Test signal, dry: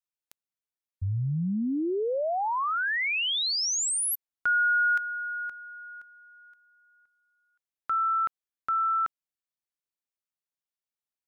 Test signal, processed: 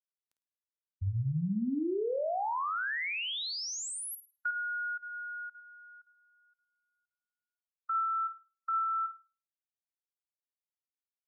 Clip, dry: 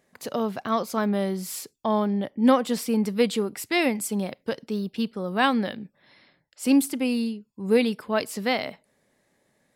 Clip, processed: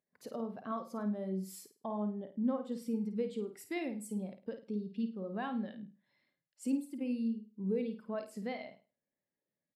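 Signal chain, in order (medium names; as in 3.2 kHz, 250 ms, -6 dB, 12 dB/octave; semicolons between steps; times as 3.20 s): compression 3:1, threshold -33 dBFS; resampled via 32 kHz; on a send: flutter echo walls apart 9 m, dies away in 0.47 s; on the sum: spectral contrast expander 1.5:1; trim -4.5 dB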